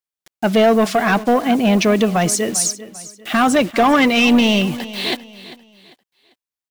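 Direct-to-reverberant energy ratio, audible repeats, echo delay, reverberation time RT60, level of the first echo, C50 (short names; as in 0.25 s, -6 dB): none, 2, 0.396 s, none, -16.5 dB, none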